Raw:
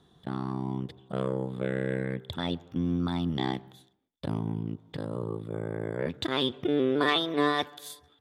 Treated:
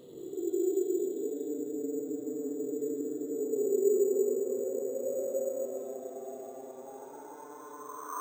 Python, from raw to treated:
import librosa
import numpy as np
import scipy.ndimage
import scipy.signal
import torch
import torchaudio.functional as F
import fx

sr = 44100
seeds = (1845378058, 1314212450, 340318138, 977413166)

y = fx.echo_stepped(x, sr, ms=103, hz=1000.0, octaves=1.4, feedback_pct=70, wet_db=0.0)
y = fx.wah_lfo(y, sr, hz=1.3, low_hz=360.0, high_hz=1400.0, q=14.0)
y = fx.paulstretch(y, sr, seeds[0], factor=22.0, window_s=0.05, from_s=6.63)
y = np.repeat(y[::6], 6)[:len(y)]
y = y * librosa.db_to_amplitude(5.5)